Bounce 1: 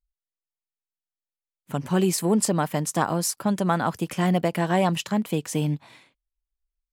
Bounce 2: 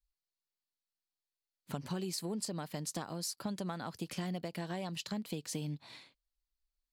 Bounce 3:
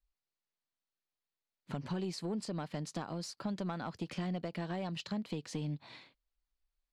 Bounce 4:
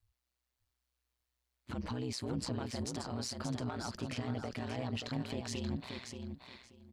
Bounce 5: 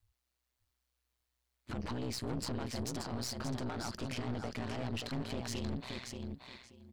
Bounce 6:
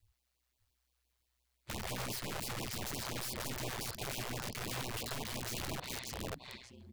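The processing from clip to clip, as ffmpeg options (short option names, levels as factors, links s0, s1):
-af "equalizer=f=4400:t=o:w=0.54:g=11,acompressor=threshold=0.0282:ratio=6,adynamicequalizer=threshold=0.00282:dfrequency=1000:dqfactor=0.99:tfrequency=1000:tqfactor=0.99:attack=5:release=100:ratio=0.375:range=2:mode=cutabove:tftype=bell,volume=0.596"
-af "asoftclip=type=tanh:threshold=0.0316,adynamicsmooth=sensitivity=1.5:basefreq=4700,volume=1.33"
-filter_complex "[0:a]alimiter=level_in=4.47:limit=0.0631:level=0:latency=1:release=15,volume=0.224,aeval=exprs='val(0)*sin(2*PI*62*n/s)':c=same,asplit=2[s0][s1];[s1]aecho=0:1:580|1160|1740:0.501|0.0952|0.0181[s2];[s0][s2]amix=inputs=2:normalize=0,volume=2.51"
-af "aeval=exprs='(tanh(70.8*val(0)+0.6)-tanh(0.6))/70.8':c=same,volume=1.68"
-af "aeval=exprs='(mod(59.6*val(0)+1,2)-1)/59.6':c=same,afftfilt=real='re*(1-between(b*sr/1024,210*pow(1700/210,0.5+0.5*sin(2*PI*5.8*pts/sr))/1.41,210*pow(1700/210,0.5+0.5*sin(2*PI*5.8*pts/sr))*1.41))':imag='im*(1-between(b*sr/1024,210*pow(1700/210,0.5+0.5*sin(2*PI*5.8*pts/sr))/1.41,210*pow(1700/210,0.5+0.5*sin(2*PI*5.8*pts/sr))*1.41))':win_size=1024:overlap=0.75,volume=1.41"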